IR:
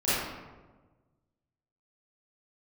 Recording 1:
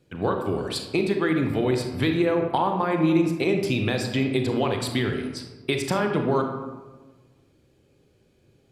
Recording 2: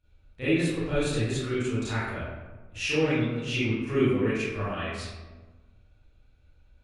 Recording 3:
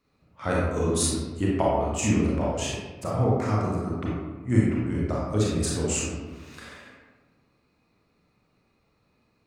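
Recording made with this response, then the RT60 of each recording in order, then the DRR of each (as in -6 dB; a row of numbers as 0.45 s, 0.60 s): 2; 1.3 s, 1.3 s, 1.3 s; 3.5 dB, -14.5 dB, -5.0 dB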